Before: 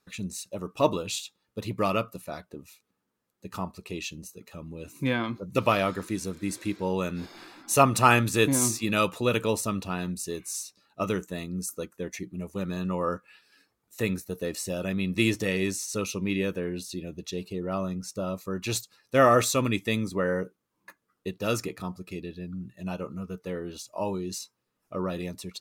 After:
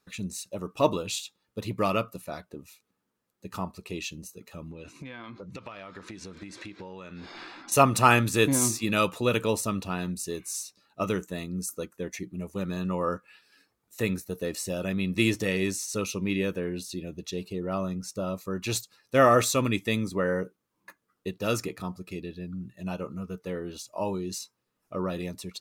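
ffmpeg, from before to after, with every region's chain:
ffmpeg -i in.wav -filter_complex "[0:a]asettb=1/sr,asplit=3[link_01][link_02][link_03];[link_01]atrim=end=4.714[link_04];[link_02]atrim=start=4.71:end=7.72,asetpts=PTS-STARTPTS,afade=type=in:duration=0.004:curve=qsin,afade=type=out:start_time=3.006:duration=0.004:curve=qsin,lowpass=5500,equalizer=frequency=2000:width=0.31:gain=6,acompressor=threshold=-37dB:ratio=16:attack=3.2:release=140:knee=1:detection=peak[link_05];[link_03]atrim=start=7.716[link_06];[link_04][link_05]acrossfade=duration=0.004:curve1=hsin:curve2=qsin[link_07];[link_07][link_06]acrossfade=duration=0.004:curve1=qsin:curve2=hsin" out.wav

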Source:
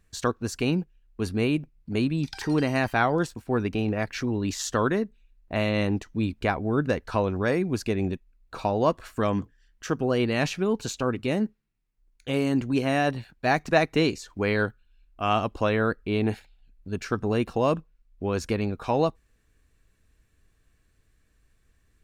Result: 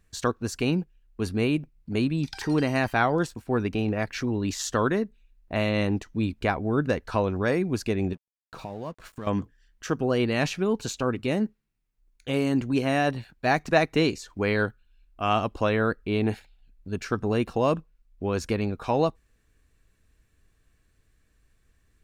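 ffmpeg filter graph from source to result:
ffmpeg -i in.wav -filter_complex "[0:a]asettb=1/sr,asplit=3[link_01][link_02][link_03];[link_01]atrim=end=8.134[link_04];[link_02]atrim=start=8.13:end=9.27,asetpts=PTS-STARTPTS,afade=type=in:duration=0.004:curve=qsin,afade=type=out:start_time=1.136:duration=0.004:curve=qsin,equalizer=frequency=160:width_type=o:width=0.6:gain=7.5,acompressor=threshold=-37dB:ratio=2.5:attack=3.2:release=140:knee=1:detection=peak,aeval=exprs='sgn(val(0))*max(abs(val(0))-0.00224,0)':channel_layout=same[link_05];[link_03]atrim=start=9.266[link_06];[link_04][link_05]acrossfade=duration=0.004:curve1=hsin:curve2=qsin[link_07];[link_07][link_06]acrossfade=duration=0.004:curve1=qsin:curve2=hsin" out.wav

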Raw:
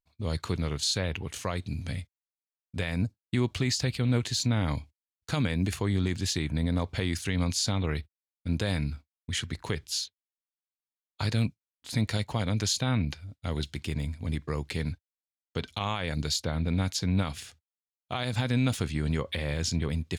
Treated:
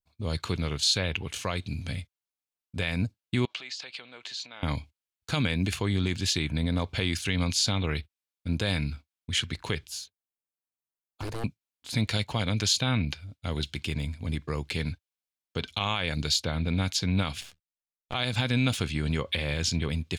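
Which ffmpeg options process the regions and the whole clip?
ffmpeg -i in.wav -filter_complex "[0:a]asettb=1/sr,asplit=3[link_01][link_02][link_03];[link_01]atrim=end=3.454[link_04];[link_02]atrim=start=3.45:end=4.63,asetpts=PTS-STARTPTS,afade=type=in:duration=0.004:curve=qsin,afade=type=out:start_time=1.176:duration=0.004:curve=qsin,acompressor=threshold=-33dB:ratio=4:attack=3.2:release=140:knee=1:detection=peak,highpass=660,lowpass=4900[link_05];[link_03]atrim=start=4.626[link_06];[link_04][link_05]acrossfade=duration=0.004:curve1=hsin:curve2=qsin[link_07];[link_07][link_06]acrossfade=duration=0.004:curve1=qsin:curve2=hsin,asettb=1/sr,asplit=3[link_08][link_09][link_10];[link_08]atrim=end=9.884[link_11];[link_09]atrim=start=9.88:end=11.44,asetpts=PTS-STARTPTS,afade=type=in:duration=0.004:curve=qsin,afade=type=out:start_time=1.556:duration=0.004:curve=qsin,equalizer=frequency=3600:width=0.72:gain=-13,aeval=exprs='0.0355*(abs(mod(val(0)/0.0355+3,4)-2)-1)':channel_layout=same[link_12];[link_10]atrim=start=11.436[link_13];[link_11][link_12]acrossfade=duration=0.004:curve1=hsin:curve2=qsin[link_14];[link_14][link_13]acrossfade=duration=0.004:curve1=qsin:curve2=hsin,asettb=1/sr,asplit=3[link_15][link_16][link_17];[link_15]atrim=end=17.414[link_18];[link_16]atrim=start=17.41:end=18.14,asetpts=PTS-STARTPTS,afade=type=in:duration=0.004:curve=qsin,afade=type=out:start_time=0.726:duration=0.004:curve=qsin,agate=range=-7dB:threshold=-59dB:ratio=16:release=100:detection=peak,aeval=exprs='max(val(0),0)':channel_layout=same[link_19];[link_17]atrim=start=18.136[link_20];[link_18][link_19]acrossfade=duration=0.004:curve1=hsin:curve2=qsin[link_21];[link_21][link_20]acrossfade=duration=0.004:curve1=qsin:curve2=hsin,bandreject=frequency=1900:width=13,adynamicequalizer=threshold=0.00501:dfrequency=2900:dqfactor=0.84:tfrequency=2900:tqfactor=0.84:attack=5:release=100:ratio=0.375:range=3.5:mode=boostabove:tftype=bell" out.wav

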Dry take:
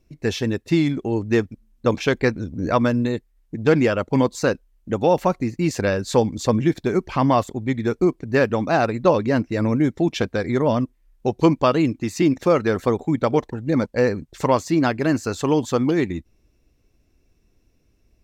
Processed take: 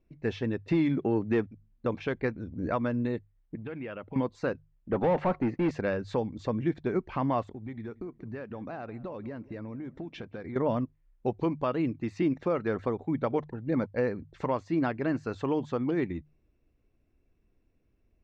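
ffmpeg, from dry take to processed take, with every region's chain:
ffmpeg -i in.wav -filter_complex "[0:a]asettb=1/sr,asplit=3[link_01][link_02][link_03];[link_01]atrim=end=0.684[link_04];[link_02]atrim=start=0.68:end=1.47,asetpts=PTS-STARTPTS,afade=type=in:duration=0.004:curve=qsin,afade=type=out:start_time=0.786:duration=0.004:curve=qsin,highpass=110,acontrast=87[link_05];[link_03]atrim=start=1.466[link_06];[link_04][link_05]acrossfade=duration=0.004:curve1=hsin:curve2=qsin[link_07];[link_07][link_06]acrossfade=duration=0.004:curve1=qsin:curve2=hsin,asettb=1/sr,asplit=3[link_08][link_09][link_10];[link_08]atrim=end=3.554[link_11];[link_09]atrim=start=3.55:end=4.16,asetpts=PTS-STARTPTS,afade=type=in:duration=0.004:curve=qsin,afade=type=out:start_time=0.606:duration=0.004:curve=qsin,acompressor=threshold=-30dB:ratio=4:attack=3.2:release=140:knee=1:detection=peak,lowpass=frequency=2900:width_type=q:width=1.9[link_12];[link_10]atrim=start=4.156[link_13];[link_11][link_12]acrossfade=duration=0.004:curve1=hsin:curve2=qsin[link_14];[link_14][link_13]acrossfade=duration=0.004:curve1=qsin:curve2=hsin,asettb=1/sr,asplit=3[link_15][link_16][link_17];[link_15]atrim=end=4.924[link_18];[link_16]atrim=start=4.92:end=5.71,asetpts=PTS-STARTPTS,afade=type=in:duration=0.004:curve=qsin,afade=type=out:start_time=0.786:duration=0.004:curve=qsin,asoftclip=type=hard:threshold=-10.5dB,asplit=2[link_19][link_20];[link_20]highpass=frequency=720:poles=1,volume=23dB,asoftclip=type=tanh:threshold=-10.5dB[link_21];[link_19][link_21]amix=inputs=2:normalize=0,lowpass=frequency=1000:poles=1,volume=-6dB,agate=range=-33dB:threshold=-38dB:ratio=3:release=100:detection=peak[link_22];[link_17]atrim=start=5.706[link_23];[link_18][link_22]acrossfade=duration=0.004:curve1=hsin:curve2=qsin[link_24];[link_24][link_23]acrossfade=duration=0.004:curve1=qsin:curve2=hsin,asettb=1/sr,asplit=3[link_25][link_26][link_27];[link_25]atrim=end=7.464[link_28];[link_26]atrim=start=7.46:end=10.56,asetpts=PTS-STARTPTS,afade=type=in:duration=0.004:curve=qsin,afade=type=out:start_time=3.096:duration=0.004:curve=qsin,acompressor=threshold=-27dB:ratio=10:attack=3.2:release=140:knee=1:detection=peak,asplit=2[link_29][link_30];[link_30]adelay=181,lowpass=frequency=1600:poles=1,volume=-19dB,asplit=2[link_31][link_32];[link_32]adelay=181,lowpass=frequency=1600:poles=1,volume=0.32,asplit=2[link_33][link_34];[link_34]adelay=181,lowpass=frequency=1600:poles=1,volume=0.32[link_35];[link_29][link_31][link_33][link_35]amix=inputs=4:normalize=0,atrim=end_sample=136710[link_36];[link_27]atrim=start=10.556[link_37];[link_28][link_36]acrossfade=duration=0.004:curve1=hsin:curve2=qsin[link_38];[link_38][link_37]acrossfade=duration=0.004:curve1=qsin:curve2=hsin,bandreject=frequency=50:width_type=h:width=6,bandreject=frequency=100:width_type=h:width=6,bandreject=frequency=150:width_type=h:width=6,alimiter=limit=-10dB:level=0:latency=1:release=334,lowpass=2500,volume=-7.5dB" out.wav

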